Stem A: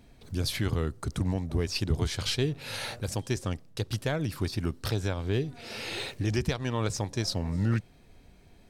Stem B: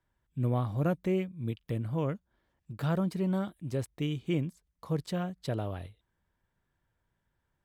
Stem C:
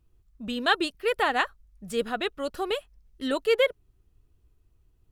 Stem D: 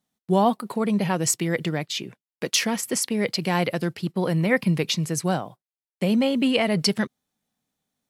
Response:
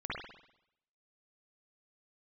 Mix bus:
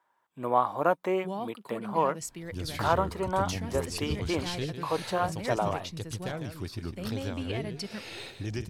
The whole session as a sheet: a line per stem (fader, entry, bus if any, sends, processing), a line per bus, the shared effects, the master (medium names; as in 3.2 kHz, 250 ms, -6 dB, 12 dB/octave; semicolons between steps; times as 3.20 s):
-6.5 dB, 2.20 s, no send, echo send -9.5 dB, none
+2.0 dB, 0.00 s, no send, no echo send, high-pass 360 Hz 12 dB/octave; peaking EQ 960 Hz +14.5 dB 1.3 oct
mute
-16.0 dB, 0.95 s, no send, no echo send, none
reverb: none
echo: delay 152 ms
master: none